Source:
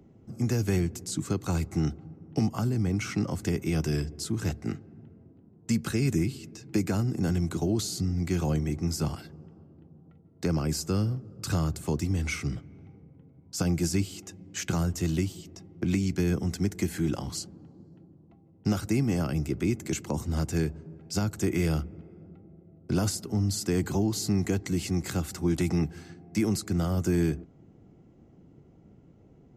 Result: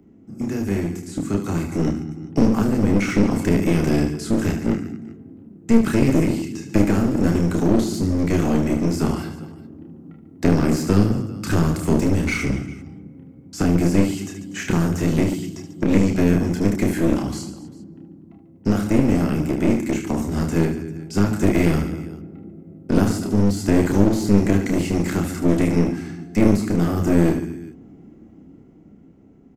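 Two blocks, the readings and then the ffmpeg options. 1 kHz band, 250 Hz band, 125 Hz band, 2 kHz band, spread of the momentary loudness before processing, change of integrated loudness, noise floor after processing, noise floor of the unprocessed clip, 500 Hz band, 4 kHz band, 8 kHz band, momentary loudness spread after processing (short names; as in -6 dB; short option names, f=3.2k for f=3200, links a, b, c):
+10.0 dB, +11.0 dB, +6.0 dB, +9.0 dB, 9 LU, +9.0 dB, -47 dBFS, -56 dBFS, +10.5 dB, +2.5 dB, +1.5 dB, 14 LU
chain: -filter_complex "[0:a]bandreject=f=60:t=h:w=6,bandreject=f=120:t=h:w=6,bandreject=f=180:t=h:w=6,bandreject=f=240:t=h:w=6,acrossover=split=3100[a][b];[b]acompressor=threshold=-40dB:ratio=4:attack=1:release=60[c];[a][c]amix=inputs=2:normalize=0,equalizer=f=125:t=o:w=1:g=-5,equalizer=f=250:t=o:w=1:g=10,equalizer=f=500:t=o:w=1:g=-3,equalizer=f=2k:t=o:w=1:g=3,equalizer=f=4k:t=o:w=1:g=-4,aecho=1:1:30|75|142.5|243.8|395.6:0.631|0.398|0.251|0.158|0.1,dynaudnorm=f=400:g=9:m=11.5dB,aeval=exprs='clip(val(0),-1,0.0841)':c=same"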